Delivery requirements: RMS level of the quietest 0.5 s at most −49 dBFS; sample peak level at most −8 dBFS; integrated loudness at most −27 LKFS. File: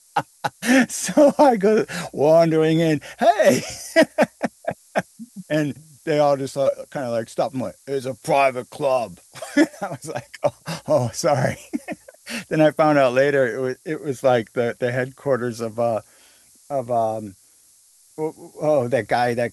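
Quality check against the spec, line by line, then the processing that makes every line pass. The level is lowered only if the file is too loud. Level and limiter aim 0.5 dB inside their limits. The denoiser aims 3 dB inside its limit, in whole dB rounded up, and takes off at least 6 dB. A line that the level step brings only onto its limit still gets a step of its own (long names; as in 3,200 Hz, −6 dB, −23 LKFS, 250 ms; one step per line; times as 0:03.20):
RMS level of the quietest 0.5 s −55 dBFS: in spec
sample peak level −4.5 dBFS: out of spec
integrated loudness −21.0 LKFS: out of spec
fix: level −6.5 dB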